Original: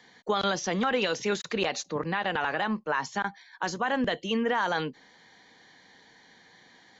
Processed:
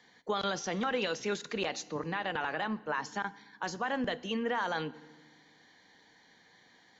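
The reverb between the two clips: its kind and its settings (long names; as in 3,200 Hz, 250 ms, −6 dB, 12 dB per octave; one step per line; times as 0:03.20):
feedback delay network reverb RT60 1.3 s, low-frequency decay 1.6×, high-frequency decay 0.8×, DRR 16.5 dB
level −5.5 dB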